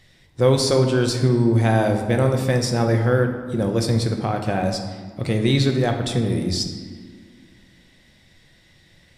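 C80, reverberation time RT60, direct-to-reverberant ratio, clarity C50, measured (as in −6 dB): 8.0 dB, 1.8 s, 4.0 dB, 6.5 dB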